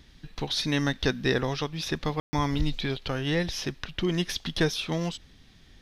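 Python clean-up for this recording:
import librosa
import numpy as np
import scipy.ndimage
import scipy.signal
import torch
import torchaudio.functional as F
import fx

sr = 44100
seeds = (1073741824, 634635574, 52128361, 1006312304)

y = fx.fix_ambience(x, sr, seeds[0], print_start_s=5.26, print_end_s=5.76, start_s=2.2, end_s=2.33)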